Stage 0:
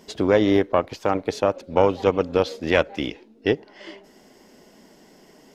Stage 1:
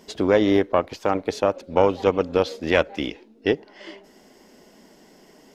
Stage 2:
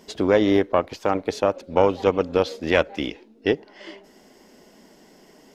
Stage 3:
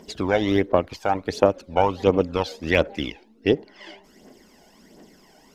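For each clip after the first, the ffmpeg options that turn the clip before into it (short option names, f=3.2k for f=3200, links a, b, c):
-af "equalizer=f=120:w=3.5:g=-6.5"
-af anull
-af "aphaser=in_gain=1:out_gain=1:delay=1.4:decay=0.59:speed=1.4:type=triangular,volume=-2dB"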